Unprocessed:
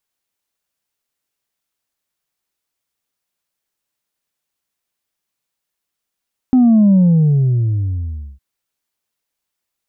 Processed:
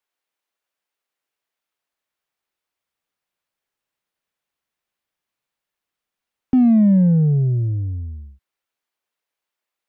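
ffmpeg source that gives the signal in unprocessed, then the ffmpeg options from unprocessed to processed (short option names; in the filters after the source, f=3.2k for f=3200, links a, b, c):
-f lavfi -i "aevalsrc='0.422*clip((1.86-t)/1.45,0,1)*tanh(1.19*sin(2*PI*260*1.86/log(65/260)*(exp(log(65/260)*t/1.86)-1)))/tanh(1.19)':d=1.86:s=44100"
-filter_complex "[0:a]bass=f=250:g=-14,treble=f=4k:g=-9,acrossover=split=190|470[a][b][c];[a]dynaudnorm=f=530:g=9:m=11.5dB[d];[c]asoftclip=type=tanh:threshold=-36dB[e];[d][b][e]amix=inputs=3:normalize=0"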